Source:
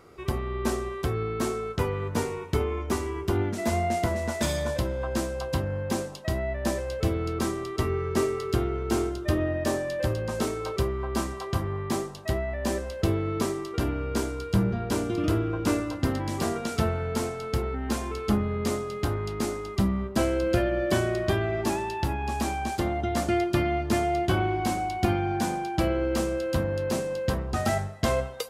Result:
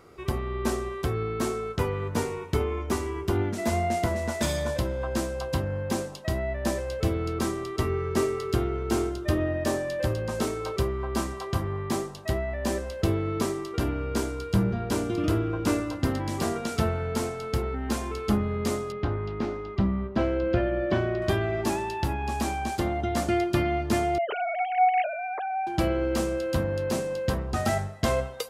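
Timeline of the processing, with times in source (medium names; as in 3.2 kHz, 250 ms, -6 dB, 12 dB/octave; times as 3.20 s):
18.92–21.22 s: distance through air 260 m
24.18–25.67 s: formants replaced by sine waves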